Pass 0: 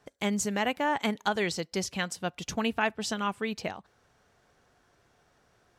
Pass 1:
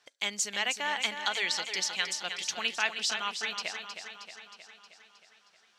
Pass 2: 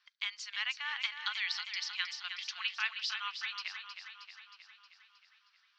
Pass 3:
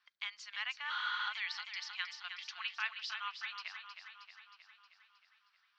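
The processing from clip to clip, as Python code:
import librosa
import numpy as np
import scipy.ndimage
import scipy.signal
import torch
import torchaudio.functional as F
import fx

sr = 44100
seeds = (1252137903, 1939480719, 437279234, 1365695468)

y1 = fx.bandpass_q(x, sr, hz=4000.0, q=0.96)
y1 = fx.echo_feedback(y1, sr, ms=314, feedback_pct=60, wet_db=-8.0)
y1 = y1 * librosa.db_to_amplitude(6.5)
y2 = scipy.signal.sosfilt(scipy.signal.ellip(3, 1.0, 50, [1100.0, 5000.0], 'bandpass', fs=sr, output='sos'), y1)
y2 = y2 * librosa.db_to_amplitude(-4.0)
y3 = fx.spec_repair(y2, sr, seeds[0], start_s=0.92, length_s=0.33, low_hz=840.0, high_hz=7600.0, source='after')
y3 = fx.high_shelf(y3, sr, hz=2000.0, db=-10.5)
y3 = y3 * librosa.db_to_amplitude(2.0)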